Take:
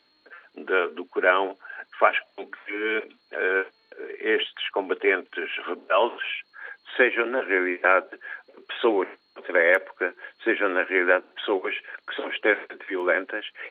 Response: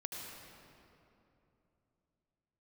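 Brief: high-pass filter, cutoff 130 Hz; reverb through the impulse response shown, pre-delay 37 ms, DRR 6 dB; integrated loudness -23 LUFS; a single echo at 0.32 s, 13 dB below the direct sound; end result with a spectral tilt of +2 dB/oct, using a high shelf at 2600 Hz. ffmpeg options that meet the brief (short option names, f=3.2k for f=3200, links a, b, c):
-filter_complex "[0:a]highpass=130,highshelf=f=2.6k:g=7.5,aecho=1:1:320:0.224,asplit=2[a][b];[1:a]atrim=start_sample=2205,adelay=37[c];[b][c]afir=irnorm=-1:irlink=0,volume=-5.5dB[d];[a][d]amix=inputs=2:normalize=0,volume=-0.5dB"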